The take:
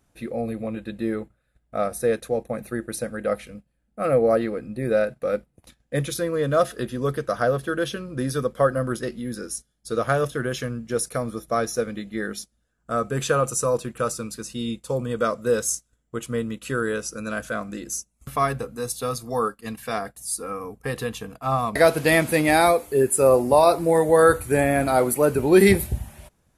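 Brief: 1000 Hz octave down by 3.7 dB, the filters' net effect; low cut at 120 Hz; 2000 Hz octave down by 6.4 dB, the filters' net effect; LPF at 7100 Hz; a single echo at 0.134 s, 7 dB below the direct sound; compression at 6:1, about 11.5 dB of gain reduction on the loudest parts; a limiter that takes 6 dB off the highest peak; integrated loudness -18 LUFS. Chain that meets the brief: HPF 120 Hz; LPF 7100 Hz; bell 1000 Hz -3.5 dB; bell 2000 Hz -7 dB; compressor 6:1, threshold -24 dBFS; limiter -20 dBFS; echo 0.134 s -7 dB; gain +13 dB

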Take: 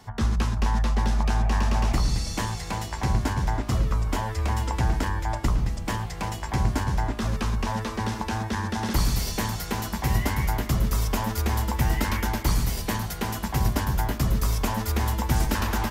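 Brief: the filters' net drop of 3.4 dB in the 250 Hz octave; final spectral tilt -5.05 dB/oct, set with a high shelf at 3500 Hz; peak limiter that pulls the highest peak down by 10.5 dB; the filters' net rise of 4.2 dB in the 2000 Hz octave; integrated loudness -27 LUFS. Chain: bell 250 Hz -4.5 dB; bell 2000 Hz +6 dB; high shelf 3500 Hz -3 dB; gain +4 dB; limiter -17 dBFS

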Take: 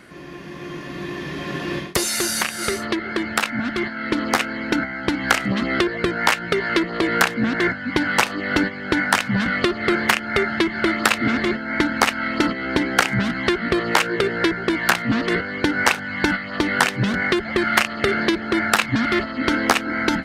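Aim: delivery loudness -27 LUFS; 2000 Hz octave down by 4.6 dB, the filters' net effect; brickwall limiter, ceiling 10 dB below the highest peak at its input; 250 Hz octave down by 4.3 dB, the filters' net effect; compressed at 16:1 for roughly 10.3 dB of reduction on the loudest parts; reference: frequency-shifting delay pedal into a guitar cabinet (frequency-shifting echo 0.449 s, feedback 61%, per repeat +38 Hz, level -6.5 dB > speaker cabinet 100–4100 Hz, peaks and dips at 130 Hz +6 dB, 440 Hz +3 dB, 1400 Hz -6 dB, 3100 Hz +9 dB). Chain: bell 250 Hz -6.5 dB; bell 2000 Hz -4.5 dB; compressor 16:1, threshold -25 dBFS; limiter -18.5 dBFS; frequency-shifting echo 0.449 s, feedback 61%, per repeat +38 Hz, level -6.5 dB; speaker cabinet 100–4100 Hz, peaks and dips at 130 Hz +6 dB, 440 Hz +3 dB, 1400 Hz -6 dB, 3100 Hz +9 dB; gain +2.5 dB

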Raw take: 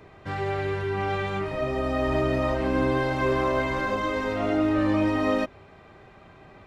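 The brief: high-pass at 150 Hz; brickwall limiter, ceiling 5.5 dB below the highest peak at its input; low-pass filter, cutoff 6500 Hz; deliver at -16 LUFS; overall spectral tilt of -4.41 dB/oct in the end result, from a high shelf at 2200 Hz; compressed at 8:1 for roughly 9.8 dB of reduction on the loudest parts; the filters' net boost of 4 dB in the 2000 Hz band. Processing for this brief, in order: HPF 150 Hz; LPF 6500 Hz; bell 2000 Hz +8.5 dB; high shelf 2200 Hz -7 dB; compressor 8:1, threshold -30 dBFS; gain +19.5 dB; limiter -7.5 dBFS

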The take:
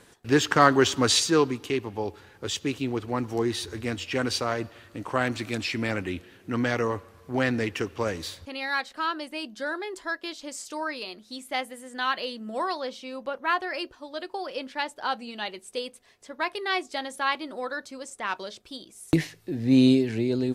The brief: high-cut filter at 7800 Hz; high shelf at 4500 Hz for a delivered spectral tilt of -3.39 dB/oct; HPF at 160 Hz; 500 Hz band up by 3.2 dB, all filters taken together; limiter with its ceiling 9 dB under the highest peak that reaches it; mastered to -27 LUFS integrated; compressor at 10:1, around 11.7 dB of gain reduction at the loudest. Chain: HPF 160 Hz; LPF 7800 Hz; bell 500 Hz +4 dB; high shelf 4500 Hz +5.5 dB; compressor 10:1, threshold -25 dBFS; gain +6 dB; limiter -15 dBFS

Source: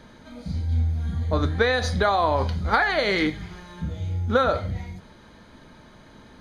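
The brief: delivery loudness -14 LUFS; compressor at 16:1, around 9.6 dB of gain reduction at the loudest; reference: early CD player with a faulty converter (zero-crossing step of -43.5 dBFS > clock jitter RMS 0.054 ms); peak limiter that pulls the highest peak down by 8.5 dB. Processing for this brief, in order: compressor 16:1, threshold -24 dBFS; limiter -22.5 dBFS; zero-crossing step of -43.5 dBFS; clock jitter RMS 0.054 ms; gain +17 dB

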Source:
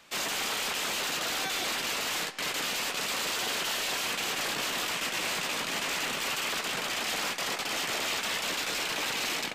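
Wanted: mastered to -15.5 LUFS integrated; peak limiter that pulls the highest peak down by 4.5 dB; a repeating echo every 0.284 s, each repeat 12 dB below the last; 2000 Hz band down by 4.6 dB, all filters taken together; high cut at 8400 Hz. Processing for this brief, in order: LPF 8400 Hz; bell 2000 Hz -6 dB; limiter -28 dBFS; feedback echo 0.284 s, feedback 25%, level -12 dB; gain +18 dB

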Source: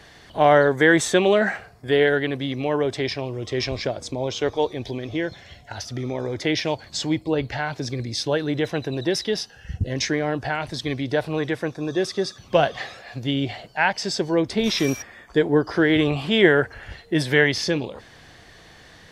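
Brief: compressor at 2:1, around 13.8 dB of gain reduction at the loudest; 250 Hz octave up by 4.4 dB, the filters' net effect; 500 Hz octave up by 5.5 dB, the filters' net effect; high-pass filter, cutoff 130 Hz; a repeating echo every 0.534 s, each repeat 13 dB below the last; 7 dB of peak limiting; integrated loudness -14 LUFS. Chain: HPF 130 Hz; bell 250 Hz +4 dB; bell 500 Hz +5.5 dB; compressor 2:1, threshold -33 dBFS; limiter -19.5 dBFS; feedback echo 0.534 s, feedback 22%, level -13 dB; gain +17 dB

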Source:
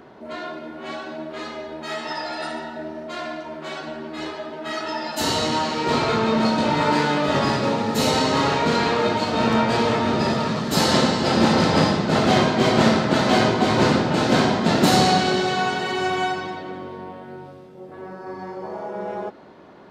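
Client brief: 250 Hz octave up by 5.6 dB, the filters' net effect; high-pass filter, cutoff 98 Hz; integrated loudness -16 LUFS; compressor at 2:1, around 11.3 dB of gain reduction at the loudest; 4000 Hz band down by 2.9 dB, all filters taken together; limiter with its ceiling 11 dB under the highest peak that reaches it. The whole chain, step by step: HPF 98 Hz; bell 250 Hz +7 dB; bell 4000 Hz -3.5 dB; compressor 2:1, threshold -30 dBFS; gain +16 dB; limiter -7 dBFS

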